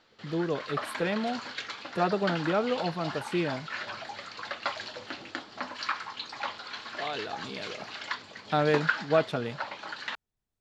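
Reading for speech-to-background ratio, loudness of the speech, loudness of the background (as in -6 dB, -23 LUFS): 5.5 dB, -31.0 LUFS, -36.5 LUFS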